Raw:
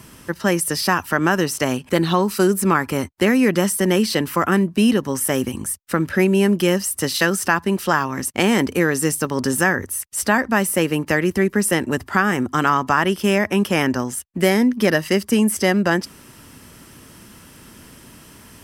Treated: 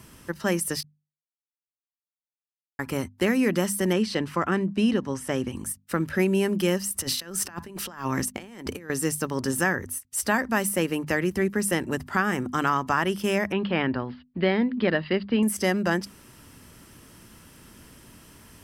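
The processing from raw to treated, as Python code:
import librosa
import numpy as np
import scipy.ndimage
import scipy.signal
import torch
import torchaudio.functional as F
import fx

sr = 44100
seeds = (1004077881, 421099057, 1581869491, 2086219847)

y = fx.air_absorb(x, sr, metres=71.0, at=(3.93, 5.56))
y = fx.over_compress(y, sr, threshold_db=-25.0, ratio=-0.5, at=(6.88, 8.9))
y = fx.high_shelf(y, sr, hz=5200.0, db=4.0, at=(10.1, 10.69))
y = fx.steep_lowpass(y, sr, hz=4600.0, slope=96, at=(13.52, 15.43))
y = fx.edit(y, sr, fx.silence(start_s=0.83, length_s=1.96), tone=tone)
y = fx.low_shelf(y, sr, hz=100.0, db=5.5)
y = fx.hum_notches(y, sr, base_hz=50, count=5)
y = fx.end_taper(y, sr, db_per_s=500.0)
y = y * 10.0 ** (-6.5 / 20.0)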